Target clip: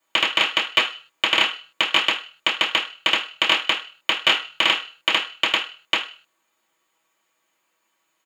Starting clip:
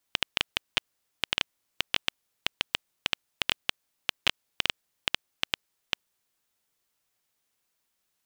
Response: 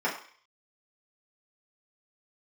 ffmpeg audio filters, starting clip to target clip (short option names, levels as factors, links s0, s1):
-filter_complex "[0:a]aecho=1:1:6.3:0.36[s0];[1:a]atrim=start_sample=2205,asetrate=57330,aresample=44100[s1];[s0][s1]afir=irnorm=-1:irlink=0,volume=1.5"